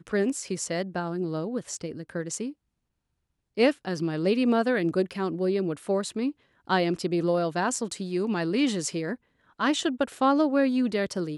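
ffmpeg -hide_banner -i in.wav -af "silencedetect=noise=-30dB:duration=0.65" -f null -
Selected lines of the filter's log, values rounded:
silence_start: 2.50
silence_end: 3.58 | silence_duration: 1.08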